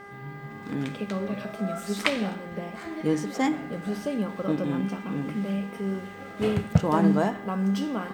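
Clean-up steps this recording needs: de-hum 402.3 Hz, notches 5

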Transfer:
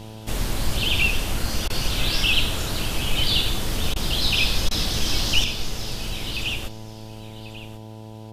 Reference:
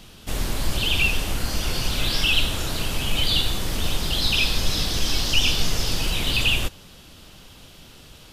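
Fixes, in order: de-hum 109.3 Hz, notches 9; interpolate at 1.68/3.94/4.69 s, 18 ms; inverse comb 1092 ms -14.5 dB; trim 0 dB, from 5.44 s +7 dB

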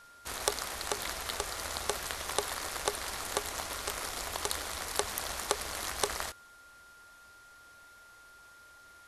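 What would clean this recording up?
clip repair -8 dBFS; band-stop 1.4 kHz, Q 30

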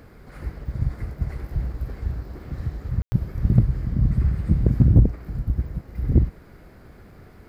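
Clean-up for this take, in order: clip repair -4.5 dBFS; room tone fill 3.02–3.12 s

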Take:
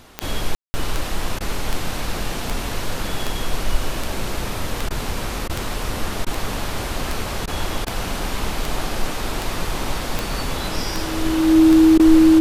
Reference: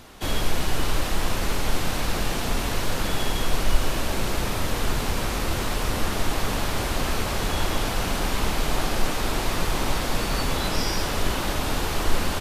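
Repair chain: de-click; band-stop 320 Hz, Q 30; room tone fill 0.55–0.74 s; interpolate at 1.39/4.89/5.48/6.25/7.46/7.85/11.98 s, 14 ms

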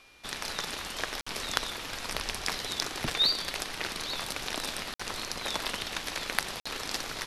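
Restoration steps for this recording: band-stop 2.4 kHz, Q 30; interpolate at 1.21/4.94/6.60 s, 55 ms

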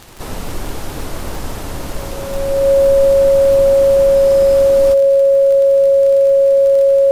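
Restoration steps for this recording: de-click; band-stop 550 Hz, Q 30; expander -16 dBFS, range -21 dB

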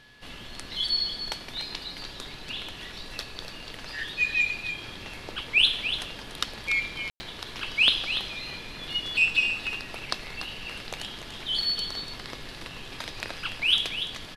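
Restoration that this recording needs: band-stop 1.7 kHz, Q 30; room tone fill 7.10–7.20 s; inverse comb 290 ms -9.5 dB

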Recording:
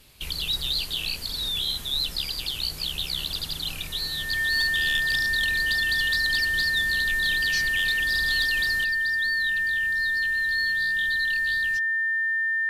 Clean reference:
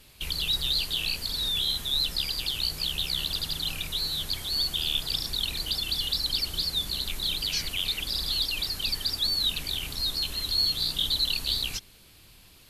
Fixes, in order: clip repair -17.5 dBFS; band-stop 1.8 kHz, Q 30; trim 0 dB, from 8.84 s +9 dB

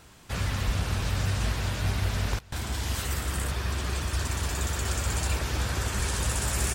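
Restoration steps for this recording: inverse comb 825 ms -22.5 dB

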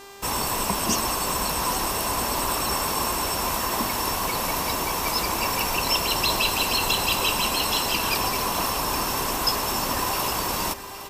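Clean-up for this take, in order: de-click; de-hum 397.2 Hz, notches 22; inverse comb 812 ms -13 dB

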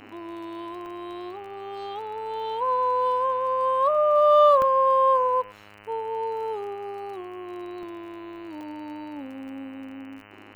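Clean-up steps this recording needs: de-click; de-hum 103.6 Hz, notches 29; interpolate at 0.86/4.62/7.83/8.61 s, 1.2 ms; inverse comb 104 ms -23.5 dB

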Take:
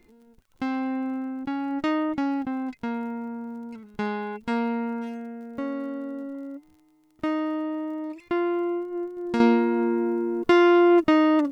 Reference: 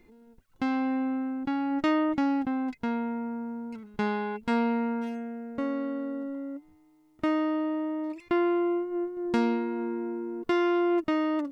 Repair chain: de-click; trim 0 dB, from 9.40 s -8 dB

